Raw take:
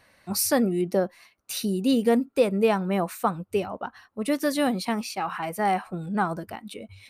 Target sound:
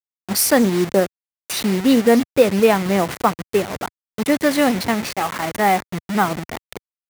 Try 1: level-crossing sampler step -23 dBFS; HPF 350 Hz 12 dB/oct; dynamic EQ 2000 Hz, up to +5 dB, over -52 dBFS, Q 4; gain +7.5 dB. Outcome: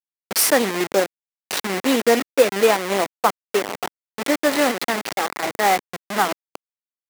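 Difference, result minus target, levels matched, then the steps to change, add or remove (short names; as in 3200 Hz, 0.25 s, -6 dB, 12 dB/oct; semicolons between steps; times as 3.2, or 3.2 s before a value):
125 Hz band -10.0 dB; level-crossing sampler: distortion +7 dB
change: level-crossing sampler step -29 dBFS; change: HPF 89 Hz 12 dB/oct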